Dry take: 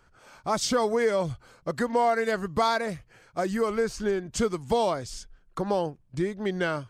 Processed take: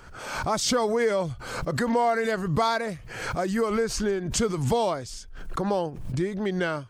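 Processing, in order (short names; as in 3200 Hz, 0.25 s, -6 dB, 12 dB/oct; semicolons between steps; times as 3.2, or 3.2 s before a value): backwards sustainer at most 51 dB/s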